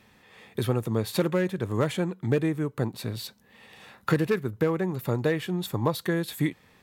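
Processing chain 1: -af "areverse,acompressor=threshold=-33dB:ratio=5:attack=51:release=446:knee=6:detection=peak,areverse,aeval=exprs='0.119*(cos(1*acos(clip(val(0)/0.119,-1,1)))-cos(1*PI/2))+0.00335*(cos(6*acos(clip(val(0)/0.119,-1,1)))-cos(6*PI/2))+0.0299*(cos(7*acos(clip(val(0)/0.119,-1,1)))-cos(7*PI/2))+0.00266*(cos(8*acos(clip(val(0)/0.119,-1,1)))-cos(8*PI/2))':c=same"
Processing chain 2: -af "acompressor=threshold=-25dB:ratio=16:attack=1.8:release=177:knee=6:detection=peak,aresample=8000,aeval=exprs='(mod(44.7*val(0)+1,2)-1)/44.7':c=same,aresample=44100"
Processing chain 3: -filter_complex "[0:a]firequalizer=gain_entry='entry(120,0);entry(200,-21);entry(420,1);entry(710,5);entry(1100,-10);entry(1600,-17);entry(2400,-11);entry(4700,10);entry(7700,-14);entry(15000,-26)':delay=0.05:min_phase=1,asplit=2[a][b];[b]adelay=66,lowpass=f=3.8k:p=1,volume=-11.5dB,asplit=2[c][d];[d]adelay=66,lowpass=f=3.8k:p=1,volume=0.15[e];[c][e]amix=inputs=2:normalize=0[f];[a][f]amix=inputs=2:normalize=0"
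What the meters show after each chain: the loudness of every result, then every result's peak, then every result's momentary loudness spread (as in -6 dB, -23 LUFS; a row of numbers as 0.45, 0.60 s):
-38.0, -38.5, -29.5 LUFS; -19.0, -28.0, -12.5 dBFS; 12, 11, 7 LU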